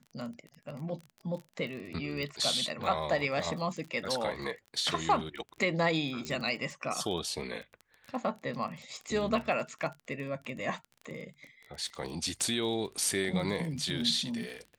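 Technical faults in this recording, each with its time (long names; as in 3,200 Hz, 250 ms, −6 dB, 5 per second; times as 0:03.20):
surface crackle 24 per second −38 dBFS
0:02.23: click −25 dBFS
0:06.25: click −22 dBFS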